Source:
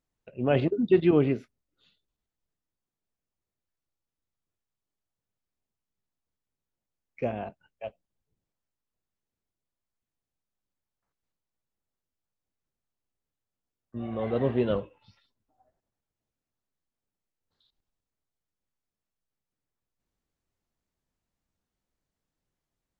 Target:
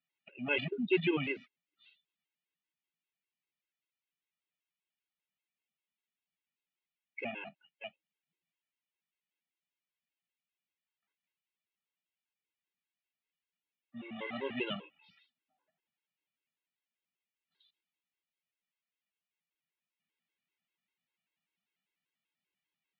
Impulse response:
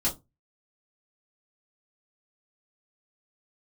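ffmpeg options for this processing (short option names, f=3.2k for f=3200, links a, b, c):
-af "highpass=f=160:w=0.5412,highpass=f=160:w=1.3066,equalizer=f=170:t=q:w=4:g=6,equalizer=f=520:t=q:w=4:g=-5,equalizer=f=900:t=q:w=4:g=5,equalizer=f=1.3k:t=q:w=4:g=9,lowpass=f=2.7k:w=0.5412,lowpass=f=2.7k:w=1.3066,aexciter=amount=14.2:drive=3.4:freq=2k,afftfilt=real='re*gt(sin(2*PI*5.1*pts/sr)*(1-2*mod(floor(b*sr/1024/280),2)),0)':imag='im*gt(sin(2*PI*5.1*pts/sr)*(1-2*mod(floor(b*sr/1024/280),2)),0)':win_size=1024:overlap=0.75,volume=-8.5dB"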